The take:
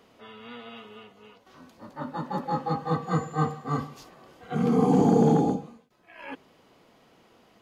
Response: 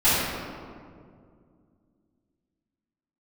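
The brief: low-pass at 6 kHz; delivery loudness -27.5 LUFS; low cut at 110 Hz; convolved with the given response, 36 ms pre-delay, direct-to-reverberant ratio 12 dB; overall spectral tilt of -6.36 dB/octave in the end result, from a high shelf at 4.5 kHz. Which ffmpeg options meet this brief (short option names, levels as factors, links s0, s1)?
-filter_complex "[0:a]highpass=110,lowpass=6000,highshelf=f=4500:g=5,asplit=2[s0][s1];[1:a]atrim=start_sample=2205,adelay=36[s2];[s1][s2]afir=irnorm=-1:irlink=0,volume=0.0282[s3];[s0][s3]amix=inputs=2:normalize=0,volume=0.794"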